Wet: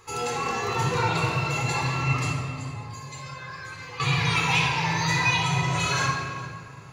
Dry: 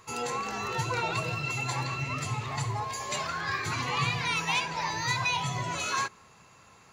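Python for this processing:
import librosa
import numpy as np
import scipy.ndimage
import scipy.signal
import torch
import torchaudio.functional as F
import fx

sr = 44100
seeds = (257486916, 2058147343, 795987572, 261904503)

y = fx.comb_fb(x, sr, f0_hz=520.0, decay_s=0.17, harmonics='all', damping=0.0, mix_pct=90, at=(2.3, 4.0))
y = y + 10.0 ** (-21.0 / 20.0) * np.pad(y, (int(408 * sr / 1000.0), 0))[:len(y)]
y = fx.room_shoebox(y, sr, seeds[0], volume_m3=3400.0, walls='mixed', distance_m=4.0)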